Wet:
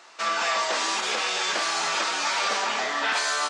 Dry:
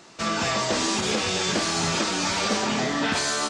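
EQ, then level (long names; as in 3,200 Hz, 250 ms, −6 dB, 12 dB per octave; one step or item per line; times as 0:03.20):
high-pass filter 850 Hz 12 dB per octave
high-shelf EQ 3,400 Hz −9 dB
+4.5 dB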